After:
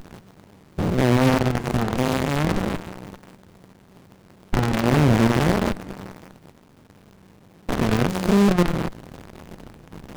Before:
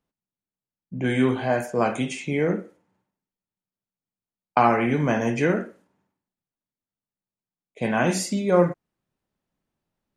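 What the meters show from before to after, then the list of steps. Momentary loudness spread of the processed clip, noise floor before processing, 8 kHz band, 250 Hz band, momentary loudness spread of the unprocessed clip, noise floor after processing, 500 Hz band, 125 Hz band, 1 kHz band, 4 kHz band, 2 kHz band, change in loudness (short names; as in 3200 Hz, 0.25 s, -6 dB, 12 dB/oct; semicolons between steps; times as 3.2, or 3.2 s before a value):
19 LU, under -85 dBFS, +0.5 dB, +4.5 dB, 10 LU, -52 dBFS, 0.0 dB, +8.0 dB, -0.5 dB, +6.5 dB, +1.0 dB, +2.0 dB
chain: stepped spectrum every 0.2 s; power-law curve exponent 0.35; running maximum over 65 samples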